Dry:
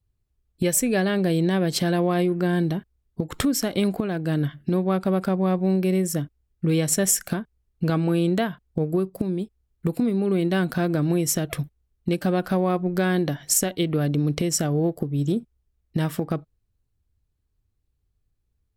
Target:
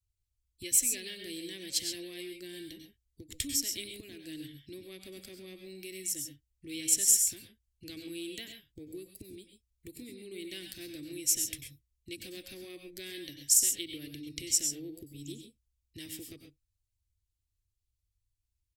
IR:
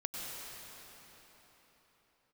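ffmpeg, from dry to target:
-filter_complex "[0:a]firequalizer=gain_entry='entry(110,0);entry(160,-26);entry(310,-5);entry(520,-20);entry(740,-28);entry(1400,-25);entry(1900,-1);entry(2900,4);entry(6900,10);entry(12000,7)':delay=0.05:min_phase=1[link_01];[1:a]atrim=start_sample=2205,afade=type=out:start_time=0.19:duration=0.01,atrim=end_sample=8820[link_02];[link_01][link_02]afir=irnorm=-1:irlink=0,volume=-8.5dB"

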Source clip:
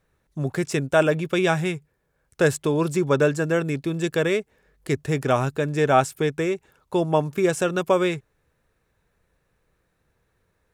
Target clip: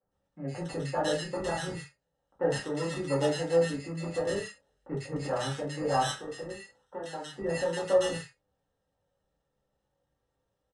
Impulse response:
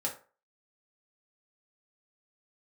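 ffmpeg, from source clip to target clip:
-filter_complex "[0:a]asettb=1/sr,asplit=3[link_01][link_02][link_03];[link_01]atrim=end=6.184[link_04];[link_02]atrim=start=6.18:end=7.39,asetpts=PTS-STARTPTS,afade=type=in:duration=0.004:curve=qsin,afade=type=out:start_time=1.206:duration=0.004:curve=qsin,acrossover=split=340|1300[link_05][link_06][link_07];[link_05]acompressor=threshold=-39dB:ratio=4[link_08];[link_06]acompressor=threshold=-28dB:ratio=4[link_09];[link_07]acompressor=threshold=-35dB:ratio=4[link_10];[link_08][link_09][link_10]amix=inputs=3:normalize=0[link_11];[link_03]atrim=start=7.386[link_12];[link_04][link_11]acrossfade=duration=0.004:curve1=hsin:curve2=qsin[link_13];[link_13][link_12]acrossfade=duration=0.004:curve1=qsin:curve2=hsin,acrusher=samples=19:mix=1:aa=0.000001,flanger=delay=9.7:depth=7.7:regen=-48:speed=0.24:shape=triangular,acrossover=split=190|1500[link_14][link_15][link_16];[link_14]adelay=30[link_17];[link_16]adelay=110[link_18];[link_17][link_15][link_18]amix=inputs=3:normalize=0[link_19];[1:a]atrim=start_sample=2205,afade=type=out:start_time=0.14:duration=0.01,atrim=end_sample=6615[link_20];[link_19][link_20]afir=irnorm=-1:irlink=0,aresample=22050,aresample=44100,volume=-8dB"

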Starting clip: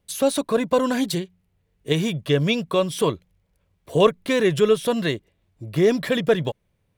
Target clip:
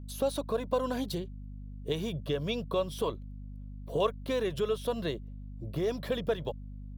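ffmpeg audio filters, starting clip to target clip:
ffmpeg -i in.wav -filter_complex "[0:a]equalizer=frequency=500:width_type=o:width=1:gain=5,equalizer=frequency=2000:width_type=o:width=1:gain=-10,equalizer=frequency=8000:width_type=o:width=1:gain=-10,acrossover=split=740[link_01][link_02];[link_01]acompressor=threshold=-25dB:ratio=6[link_03];[link_03][link_02]amix=inputs=2:normalize=0,aeval=exprs='val(0)+0.0178*(sin(2*PI*50*n/s)+sin(2*PI*2*50*n/s)/2+sin(2*PI*3*50*n/s)/3+sin(2*PI*4*50*n/s)/4+sin(2*PI*5*50*n/s)/5)':channel_layout=same,volume=-6.5dB" out.wav

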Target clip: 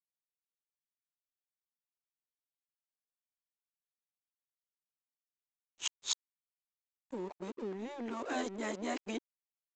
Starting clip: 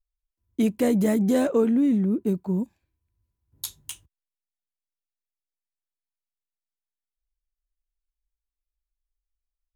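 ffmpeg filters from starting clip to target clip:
ffmpeg -i in.wav -filter_complex "[0:a]areverse,asplit=2[link_01][link_02];[link_02]asoftclip=type=tanh:threshold=-20.5dB,volume=-7dB[link_03];[link_01][link_03]amix=inputs=2:normalize=0,acompressor=threshold=-32dB:ratio=3,highpass=frequency=340:width=0.5412,highpass=frequency=340:width=1.3066,aresample=16000,aeval=exprs='sgn(val(0))*max(abs(val(0))-0.00178,0)':channel_layout=same,aresample=44100,afftfilt=real='re*lt(hypot(re,im),0.112)':imag='im*lt(hypot(re,im),0.112)':win_size=1024:overlap=0.75,volume=4.5dB" out.wav

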